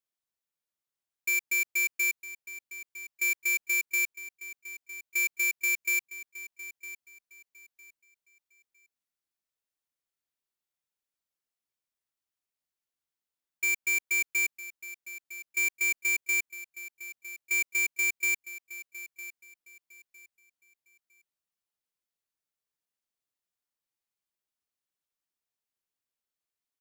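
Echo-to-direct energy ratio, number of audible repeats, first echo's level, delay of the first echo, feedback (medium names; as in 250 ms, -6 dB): -14.5 dB, 2, -15.0 dB, 957 ms, 26%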